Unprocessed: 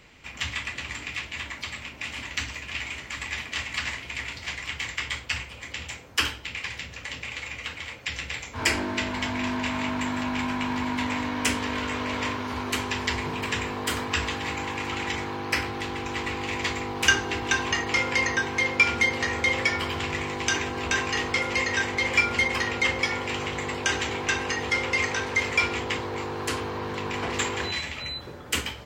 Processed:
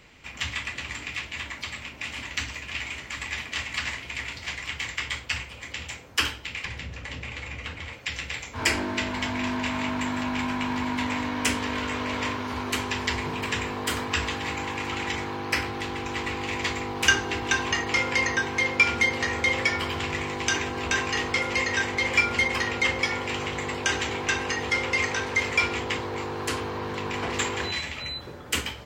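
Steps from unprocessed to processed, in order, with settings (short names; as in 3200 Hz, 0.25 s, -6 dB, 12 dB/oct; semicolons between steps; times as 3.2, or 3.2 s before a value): 6.65–7.93 tilt -2 dB/oct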